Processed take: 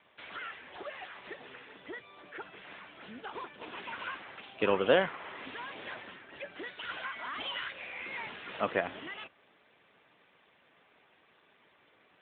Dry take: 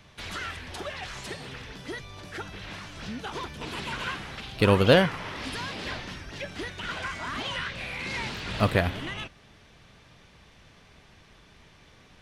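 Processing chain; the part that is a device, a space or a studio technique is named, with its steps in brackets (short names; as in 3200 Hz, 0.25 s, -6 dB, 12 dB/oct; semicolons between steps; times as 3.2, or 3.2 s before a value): 6.63–7.73 dynamic EQ 4800 Hz, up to +7 dB, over -50 dBFS, Q 0.95; telephone (BPF 330–3600 Hz; gain -4.5 dB; AMR-NB 12.2 kbps 8000 Hz)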